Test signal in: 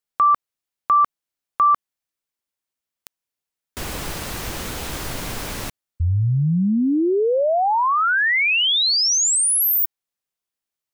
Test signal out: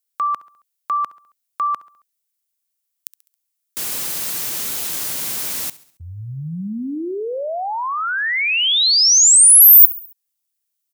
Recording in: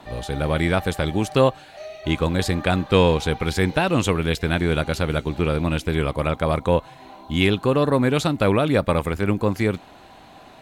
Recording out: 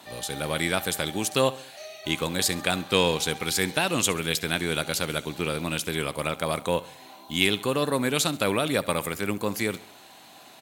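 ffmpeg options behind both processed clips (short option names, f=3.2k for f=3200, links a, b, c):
-filter_complex "[0:a]highpass=140,crystalizer=i=5:c=0,asplit=2[a][b];[b]aecho=0:1:68|136|204|272:0.112|0.0539|0.0259|0.0124[c];[a][c]amix=inputs=2:normalize=0,volume=-7dB"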